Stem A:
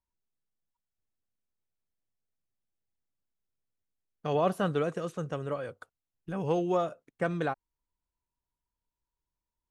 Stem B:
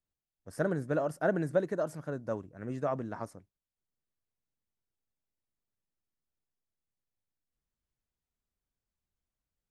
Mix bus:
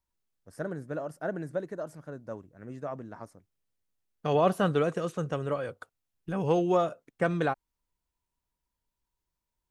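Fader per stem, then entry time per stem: +3.0 dB, -4.5 dB; 0.00 s, 0.00 s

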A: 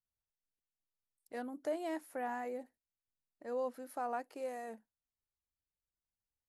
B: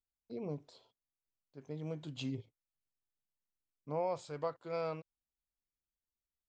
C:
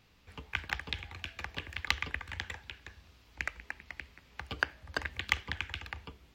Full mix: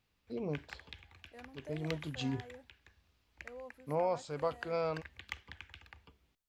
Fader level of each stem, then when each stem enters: -11.5 dB, +3.0 dB, -13.5 dB; 0.00 s, 0.00 s, 0.00 s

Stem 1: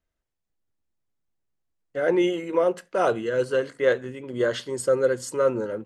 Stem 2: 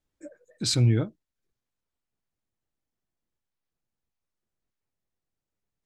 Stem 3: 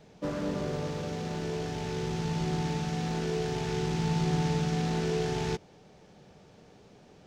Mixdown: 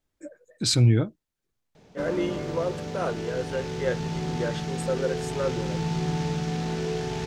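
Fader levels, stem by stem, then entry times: -7.0 dB, +2.5 dB, +0.5 dB; 0.00 s, 0.00 s, 1.75 s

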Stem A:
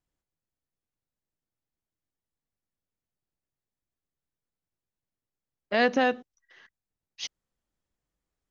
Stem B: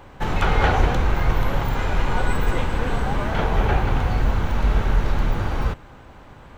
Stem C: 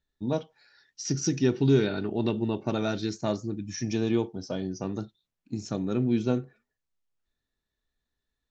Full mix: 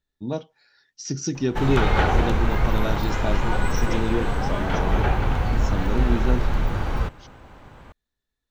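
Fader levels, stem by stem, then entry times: -16.5 dB, -1.5 dB, 0.0 dB; 0.00 s, 1.35 s, 0.00 s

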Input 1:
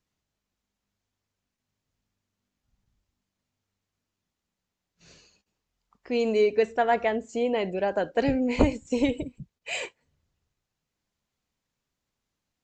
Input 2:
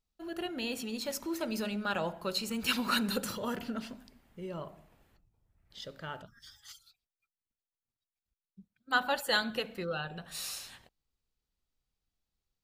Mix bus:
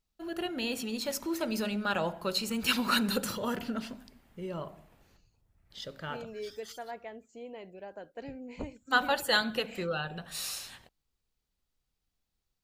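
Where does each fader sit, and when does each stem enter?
-18.5 dB, +2.5 dB; 0.00 s, 0.00 s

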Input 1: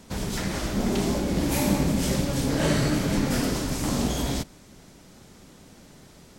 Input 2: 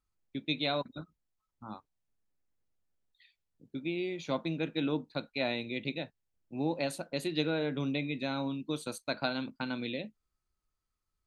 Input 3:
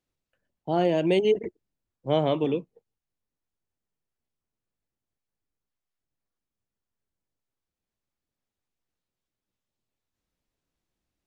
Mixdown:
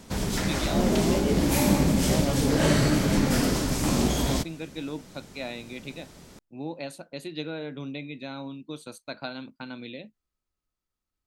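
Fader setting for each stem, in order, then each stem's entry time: +1.5 dB, -3.0 dB, -9.0 dB; 0.00 s, 0.00 s, 0.00 s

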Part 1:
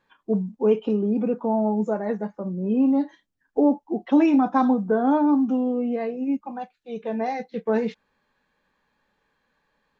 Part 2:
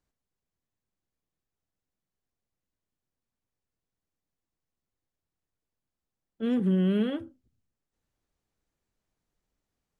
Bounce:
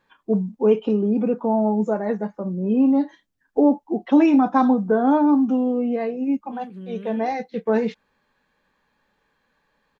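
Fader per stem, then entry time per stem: +2.5 dB, -12.5 dB; 0.00 s, 0.10 s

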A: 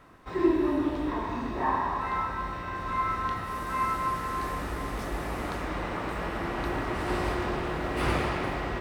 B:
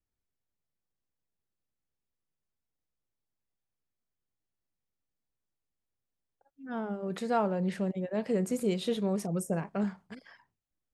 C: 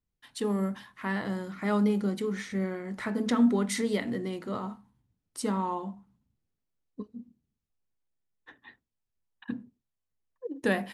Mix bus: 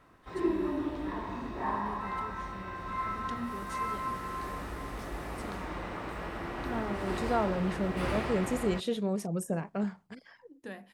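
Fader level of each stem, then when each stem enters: -6.0 dB, -1.0 dB, -16.5 dB; 0.00 s, 0.00 s, 0.00 s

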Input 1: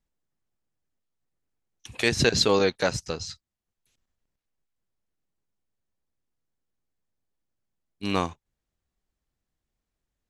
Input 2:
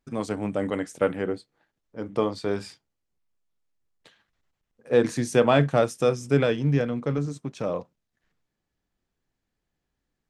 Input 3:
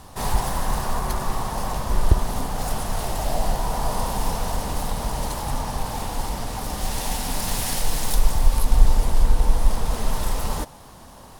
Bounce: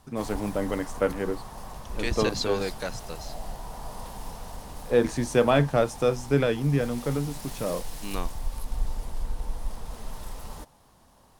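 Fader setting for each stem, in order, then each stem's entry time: -8.5 dB, -1.5 dB, -14.0 dB; 0.00 s, 0.00 s, 0.00 s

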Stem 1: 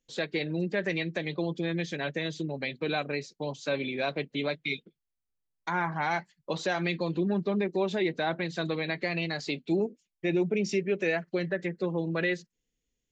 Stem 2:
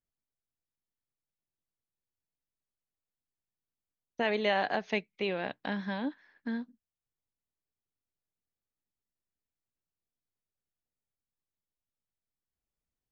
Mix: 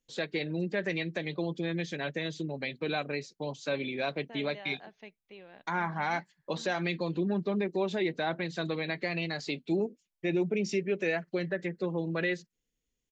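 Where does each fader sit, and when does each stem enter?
-2.0 dB, -18.0 dB; 0.00 s, 0.10 s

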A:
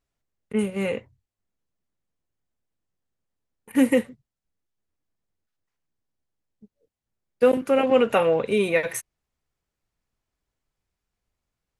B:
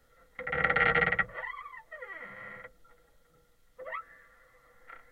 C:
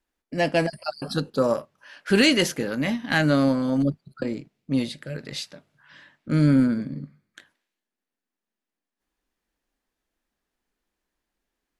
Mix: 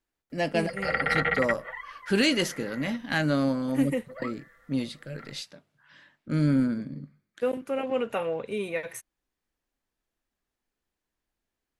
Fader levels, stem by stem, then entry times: -9.5 dB, -0.5 dB, -5.0 dB; 0.00 s, 0.30 s, 0.00 s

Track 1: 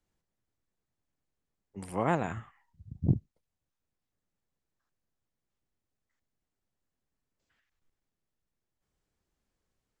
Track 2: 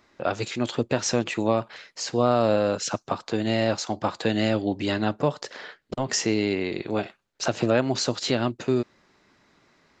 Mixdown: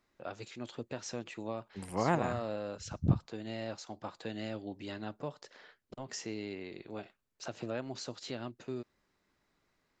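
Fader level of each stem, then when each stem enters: -1.5 dB, -16.5 dB; 0.00 s, 0.00 s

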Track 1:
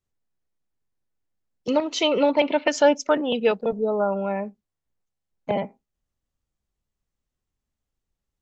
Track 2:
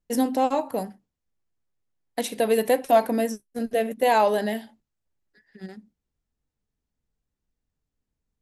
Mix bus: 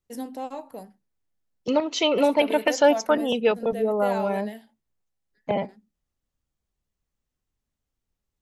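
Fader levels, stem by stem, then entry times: -0.5 dB, -11.5 dB; 0.00 s, 0.00 s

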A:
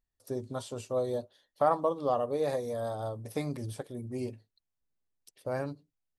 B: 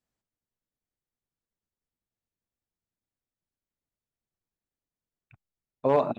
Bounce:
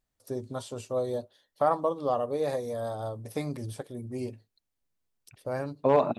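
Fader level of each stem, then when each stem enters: +1.0 dB, +0.5 dB; 0.00 s, 0.00 s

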